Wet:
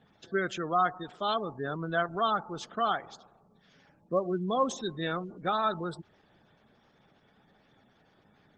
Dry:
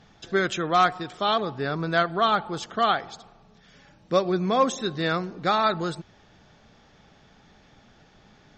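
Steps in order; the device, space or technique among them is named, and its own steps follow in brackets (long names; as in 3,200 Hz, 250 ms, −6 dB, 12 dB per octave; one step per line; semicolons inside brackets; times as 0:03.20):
noise-suppressed video call (high-pass filter 110 Hz 12 dB per octave; gate on every frequency bin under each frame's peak −20 dB strong; level −6 dB; Opus 16 kbit/s 48,000 Hz)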